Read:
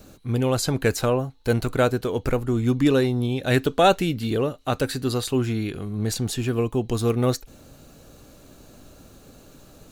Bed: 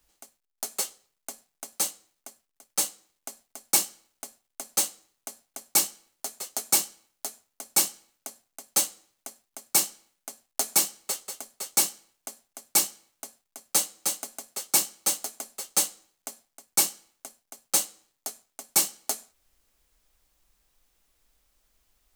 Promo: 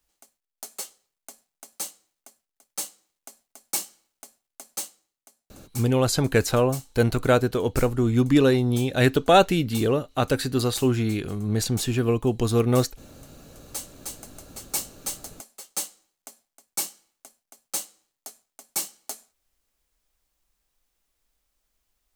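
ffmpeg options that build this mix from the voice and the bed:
ffmpeg -i stem1.wav -i stem2.wav -filter_complex "[0:a]adelay=5500,volume=1dB[link_01];[1:a]volume=5dB,afade=type=out:start_time=4.6:duration=0.7:silence=0.281838,afade=type=in:start_time=13.18:duration=1.47:silence=0.298538[link_02];[link_01][link_02]amix=inputs=2:normalize=0" out.wav

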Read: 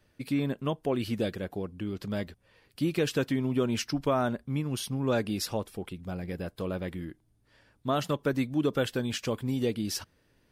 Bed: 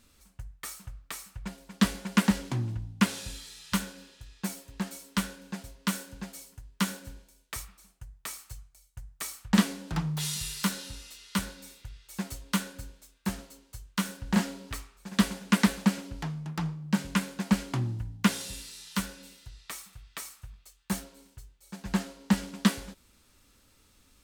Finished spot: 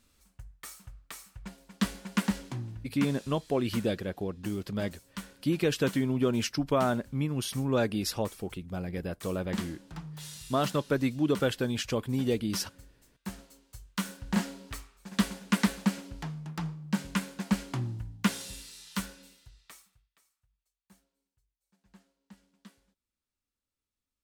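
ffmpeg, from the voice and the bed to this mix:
ffmpeg -i stem1.wav -i stem2.wav -filter_complex "[0:a]adelay=2650,volume=0.5dB[link_01];[1:a]volume=3.5dB,afade=type=out:start_time=2.4:duration=0.7:silence=0.473151,afade=type=in:start_time=12.95:duration=0.93:silence=0.375837,afade=type=out:start_time=19:duration=1.1:silence=0.0473151[link_02];[link_01][link_02]amix=inputs=2:normalize=0" out.wav

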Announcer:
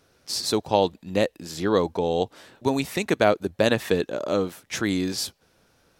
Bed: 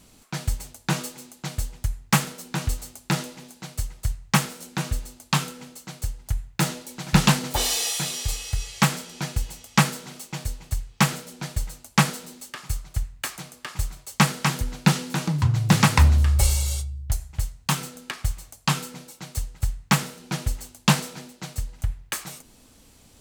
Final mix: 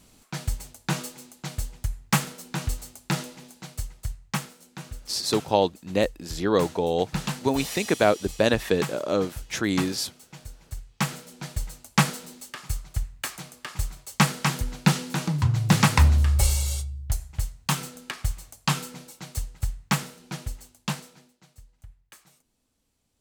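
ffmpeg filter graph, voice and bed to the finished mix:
ffmpeg -i stem1.wav -i stem2.wav -filter_complex "[0:a]adelay=4800,volume=-0.5dB[link_01];[1:a]volume=8dB,afade=type=out:start_time=3.58:duration=0.99:silence=0.334965,afade=type=in:start_time=10.55:duration=1.3:silence=0.298538,afade=type=out:start_time=19.29:duration=2.15:silence=0.105925[link_02];[link_01][link_02]amix=inputs=2:normalize=0" out.wav

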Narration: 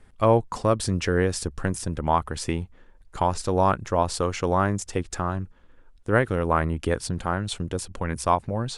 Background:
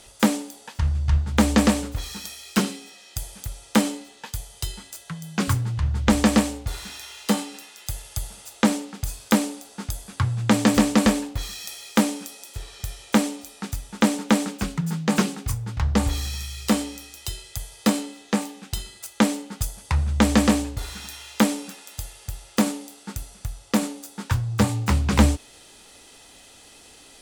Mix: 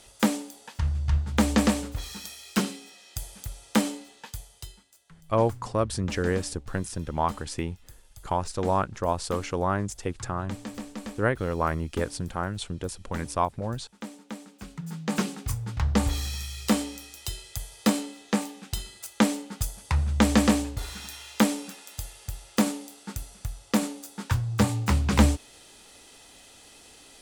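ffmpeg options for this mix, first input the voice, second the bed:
ffmpeg -i stem1.wav -i stem2.wav -filter_complex "[0:a]adelay=5100,volume=-4dB[link_01];[1:a]volume=13.5dB,afade=type=out:start_time=4.11:duration=0.74:silence=0.158489,afade=type=in:start_time=14.51:duration=1.12:silence=0.133352[link_02];[link_01][link_02]amix=inputs=2:normalize=0" out.wav

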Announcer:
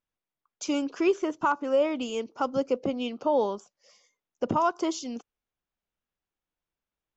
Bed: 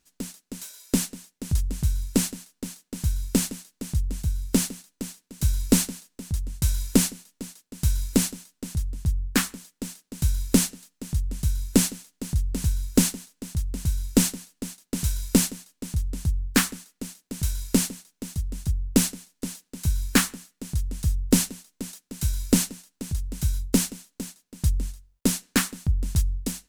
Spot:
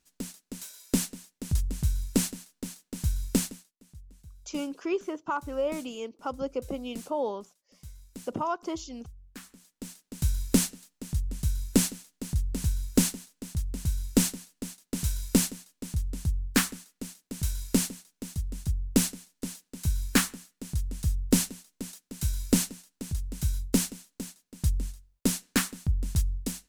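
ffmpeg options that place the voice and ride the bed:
ffmpeg -i stem1.wav -i stem2.wav -filter_complex "[0:a]adelay=3850,volume=-5.5dB[link_01];[1:a]volume=17dB,afade=type=out:start_time=3.35:duration=0.38:silence=0.0944061,afade=type=in:start_time=9.4:duration=0.71:silence=0.1[link_02];[link_01][link_02]amix=inputs=2:normalize=0" out.wav

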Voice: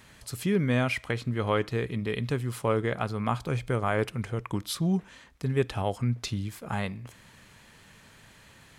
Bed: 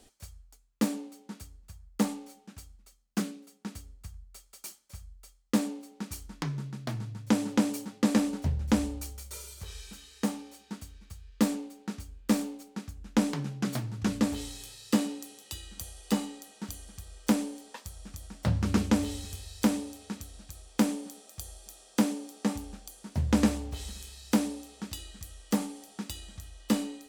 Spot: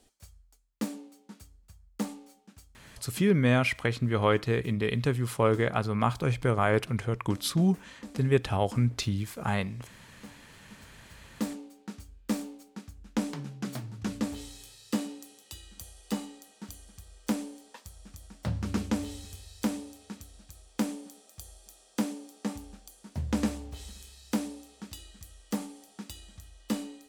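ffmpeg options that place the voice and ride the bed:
ffmpeg -i stem1.wav -i stem2.wav -filter_complex "[0:a]adelay=2750,volume=2dB[link_01];[1:a]volume=9dB,afade=type=out:start_time=2.5:duration=0.74:silence=0.211349,afade=type=in:start_time=10.47:duration=1.31:silence=0.188365[link_02];[link_01][link_02]amix=inputs=2:normalize=0" out.wav

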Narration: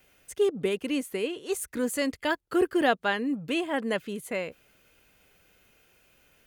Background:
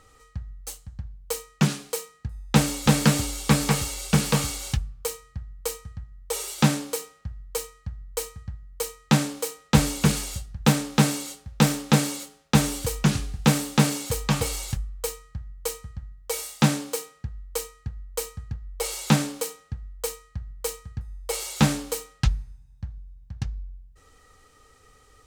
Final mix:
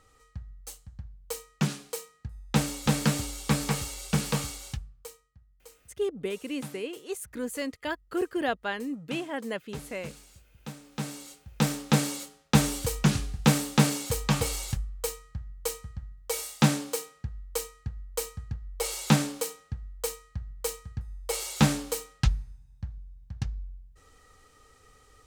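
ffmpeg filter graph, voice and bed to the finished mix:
ffmpeg -i stem1.wav -i stem2.wav -filter_complex "[0:a]adelay=5600,volume=-5dB[link_01];[1:a]volume=14dB,afade=type=out:start_time=4.33:duration=0.98:silence=0.158489,afade=type=in:start_time=10.81:duration=1.44:silence=0.1[link_02];[link_01][link_02]amix=inputs=2:normalize=0" out.wav

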